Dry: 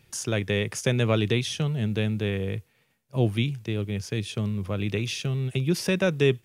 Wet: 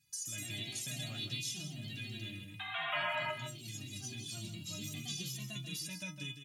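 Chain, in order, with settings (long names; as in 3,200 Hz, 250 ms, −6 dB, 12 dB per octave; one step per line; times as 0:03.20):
drawn EQ curve 180 Hz 0 dB, 350 Hz −24 dB, 1,400 Hz −14 dB, 5,900 Hz +7 dB
sound drawn into the spectrogram noise, 0:02.92–0:03.32, 570–3,300 Hz −20 dBFS
high-pass filter 100 Hz
high-shelf EQ 4,400 Hz −8 dB
stiff-string resonator 300 Hz, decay 0.24 s, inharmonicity 0.008
downward compressor 2.5 to 1, threshold −47 dBFS, peak gain reduction 11 dB
single-tap delay 158 ms −9 dB
delay with pitch and tempo change per echo 138 ms, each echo +2 semitones, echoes 2
level +7.5 dB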